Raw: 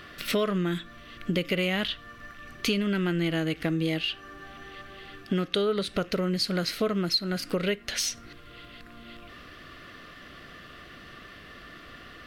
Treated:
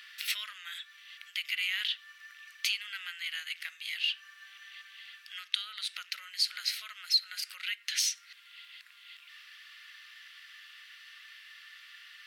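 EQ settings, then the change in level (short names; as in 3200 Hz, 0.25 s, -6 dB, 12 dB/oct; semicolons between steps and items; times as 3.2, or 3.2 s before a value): inverse Chebyshev high-pass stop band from 310 Hz, stop band 80 dB; 0.0 dB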